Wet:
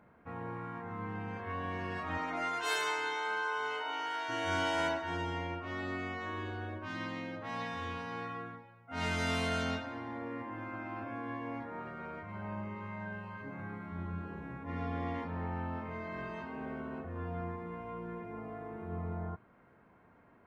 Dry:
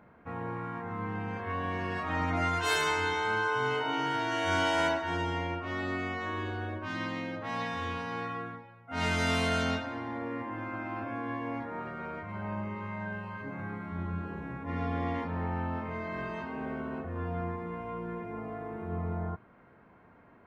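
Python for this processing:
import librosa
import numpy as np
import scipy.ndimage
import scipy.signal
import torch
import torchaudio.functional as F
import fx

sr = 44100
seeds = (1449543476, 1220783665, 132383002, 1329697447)

y = fx.highpass(x, sr, hz=fx.line((2.17, 280.0), (4.28, 670.0)), slope=12, at=(2.17, 4.28), fade=0.02)
y = F.gain(torch.from_numpy(y), -4.5).numpy()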